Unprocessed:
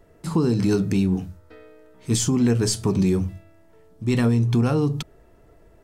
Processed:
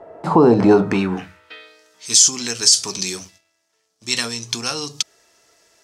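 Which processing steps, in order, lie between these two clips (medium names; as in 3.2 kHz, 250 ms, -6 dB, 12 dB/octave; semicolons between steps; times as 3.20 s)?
3.17–4.03 s: power-law waveshaper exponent 1.4; band-pass sweep 730 Hz -> 5.7 kHz, 0.71–1.86 s; loudness maximiser +24 dB; trim -1 dB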